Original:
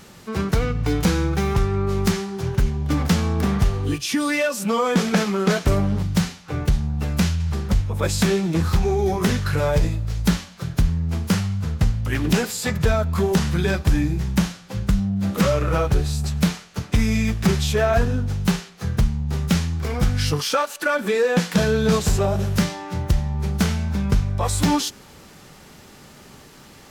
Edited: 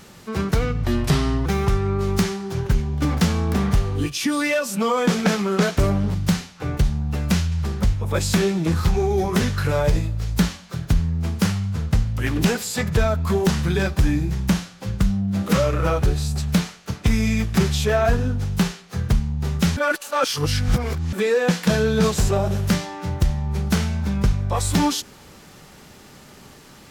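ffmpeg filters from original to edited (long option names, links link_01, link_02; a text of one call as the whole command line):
ffmpeg -i in.wav -filter_complex "[0:a]asplit=5[link_01][link_02][link_03][link_04][link_05];[link_01]atrim=end=0.844[link_06];[link_02]atrim=start=0.84:end=1.34,asetpts=PTS-STARTPTS,asetrate=35721,aresample=44100,atrim=end_sample=27222,asetpts=PTS-STARTPTS[link_07];[link_03]atrim=start=1.336:end=19.652[link_08];[link_04]atrim=start=19.648:end=21.012,asetpts=PTS-STARTPTS,areverse[link_09];[link_05]atrim=start=21.008[link_10];[link_06][link_07]acrossfade=duration=0.004:curve1=hsin:curve2=hsin[link_11];[link_11][link_08]acrossfade=duration=0.004:curve1=hsin:curve2=hsin[link_12];[link_12][link_09]acrossfade=duration=0.004:curve1=hsin:curve2=hsin[link_13];[link_13][link_10]acrossfade=duration=0.004:curve1=hsin:curve2=hsin" out.wav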